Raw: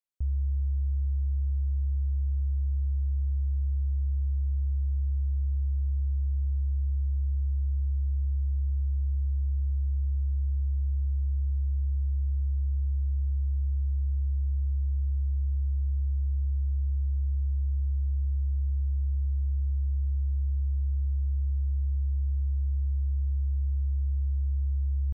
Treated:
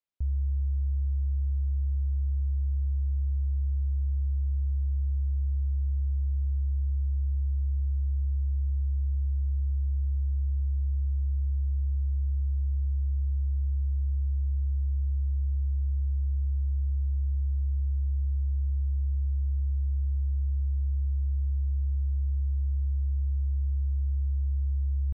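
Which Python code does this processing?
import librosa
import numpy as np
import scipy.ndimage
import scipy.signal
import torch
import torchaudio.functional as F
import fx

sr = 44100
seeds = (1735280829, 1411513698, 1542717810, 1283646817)

y = scipy.signal.sosfilt(scipy.signal.butter(2, 4700.0, 'lowpass', fs=sr, output='sos'), x)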